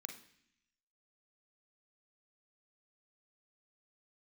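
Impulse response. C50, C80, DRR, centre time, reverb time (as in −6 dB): 7.5 dB, 13.0 dB, 4.0 dB, 18 ms, 0.65 s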